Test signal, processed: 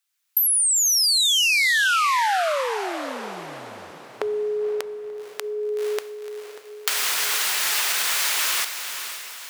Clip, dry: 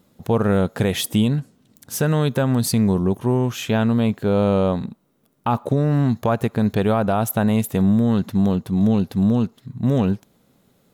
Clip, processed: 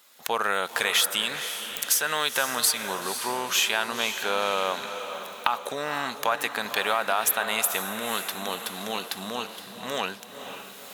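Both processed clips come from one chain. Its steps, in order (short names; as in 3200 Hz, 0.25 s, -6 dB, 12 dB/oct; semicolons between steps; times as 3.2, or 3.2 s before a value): recorder AGC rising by 18 dB/s; HPF 1400 Hz 12 dB/oct; compressor, threshold -29 dBFS; diffused feedback echo 0.509 s, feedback 47%, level -9 dB; maximiser +10.5 dB; gain -1 dB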